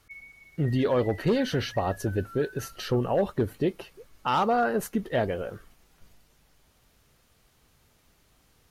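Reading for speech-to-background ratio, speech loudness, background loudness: 19.5 dB, -27.5 LUFS, -47.0 LUFS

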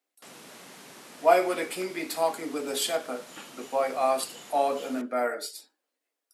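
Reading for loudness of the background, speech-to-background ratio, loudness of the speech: -47.0 LUFS, 18.5 dB, -28.5 LUFS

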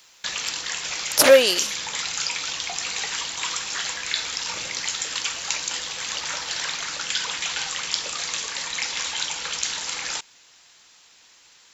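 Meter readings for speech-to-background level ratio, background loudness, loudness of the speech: 9.0 dB, -26.0 LUFS, -17.0 LUFS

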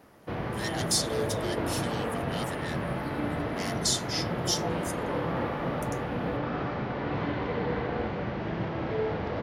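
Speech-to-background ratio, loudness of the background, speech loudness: -1.0 dB, -32.0 LUFS, -33.0 LUFS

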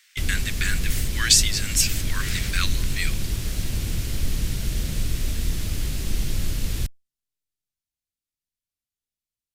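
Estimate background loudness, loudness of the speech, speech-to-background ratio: -29.0 LUFS, -23.5 LUFS, 5.5 dB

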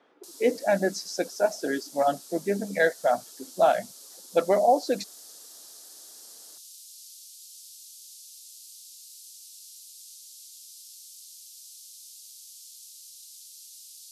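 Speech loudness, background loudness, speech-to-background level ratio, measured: -26.0 LUFS, -44.5 LUFS, 18.5 dB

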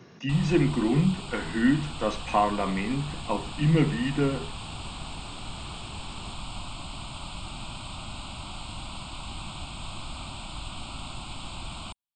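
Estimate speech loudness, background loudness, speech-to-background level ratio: -26.5 LUFS, -38.5 LUFS, 12.0 dB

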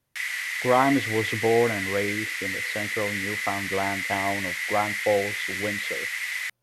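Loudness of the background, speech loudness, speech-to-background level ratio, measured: -28.0 LUFS, -27.5 LUFS, 0.5 dB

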